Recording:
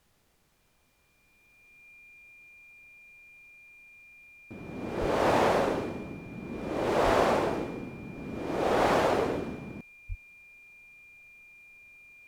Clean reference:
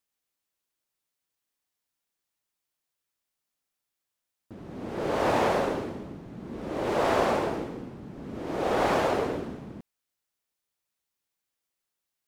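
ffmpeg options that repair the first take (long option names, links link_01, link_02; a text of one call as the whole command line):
ffmpeg -i in.wav -filter_complex "[0:a]bandreject=frequency=2400:width=30,asplit=3[link_01][link_02][link_03];[link_01]afade=type=out:start_time=5:duration=0.02[link_04];[link_02]highpass=frequency=140:width=0.5412,highpass=frequency=140:width=1.3066,afade=type=in:start_time=5:duration=0.02,afade=type=out:start_time=5.12:duration=0.02[link_05];[link_03]afade=type=in:start_time=5.12:duration=0.02[link_06];[link_04][link_05][link_06]amix=inputs=3:normalize=0,asplit=3[link_07][link_08][link_09];[link_07]afade=type=out:start_time=7.04:duration=0.02[link_10];[link_08]highpass=frequency=140:width=0.5412,highpass=frequency=140:width=1.3066,afade=type=in:start_time=7.04:duration=0.02,afade=type=out:start_time=7.16:duration=0.02[link_11];[link_09]afade=type=in:start_time=7.16:duration=0.02[link_12];[link_10][link_11][link_12]amix=inputs=3:normalize=0,asplit=3[link_13][link_14][link_15];[link_13]afade=type=out:start_time=10.08:duration=0.02[link_16];[link_14]highpass=frequency=140:width=0.5412,highpass=frequency=140:width=1.3066,afade=type=in:start_time=10.08:duration=0.02,afade=type=out:start_time=10.2:duration=0.02[link_17];[link_15]afade=type=in:start_time=10.2:duration=0.02[link_18];[link_16][link_17][link_18]amix=inputs=3:normalize=0,agate=range=-21dB:threshold=-58dB" out.wav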